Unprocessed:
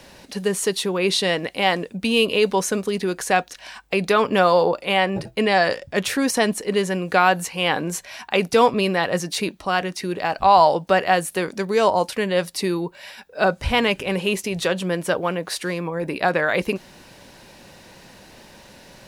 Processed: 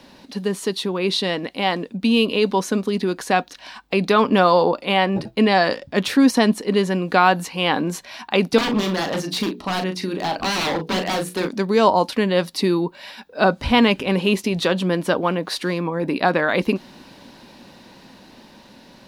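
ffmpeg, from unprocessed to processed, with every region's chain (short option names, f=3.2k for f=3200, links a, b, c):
-filter_complex "[0:a]asettb=1/sr,asplit=3[a][b][c];[a]atrim=end=8.584[d];[b]atrim=start=8.58:end=11.48,asetpts=PTS-STARTPTS,afade=t=in:d=0.004:c=qsin,afade=t=out:st=2.896:d=0.004:c=qsin,bandreject=f=60:t=h:w=6,bandreject=f=120:t=h:w=6,bandreject=f=180:t=h:w=6,bandreject=f=240:t=h:w=6,bandreject=f=300:t=h:w=6,bandreject=f=360:t=h:w=6,bandreject=f=420:t=h:w=6,bandreject=f=480:t=h:w=6,bandreject=f=540:t=h:w=6,aeval=exprs='0.112*(abs(mod(val(0)/0.112+3,4)-2)-1)':c=same,asplit=2[e][f];[f]adelay=38,volume=-8dB[g];[e][g]amix=inputs=2:normalize=0,atrim=end_sample=127890[h];[c]atrim=start=11.476[i];[d][h]acrossfade=d=0.004:c1=hsin:c2=qsin[j];[j][i]acrossfade=d=0.004:c1=qsin:c2=hsin,dynaudnorm=f=810:g=7:m=11.5dB,equalizer=f=250:t=o:w=1:g=12,equalizer=f=1k:t=o:w=1:g=6,equalizer=f=4k:t=o:w=1:g=7,equalizer=f=8k:t=o:w=1:g=-4,volume=-6.5dB"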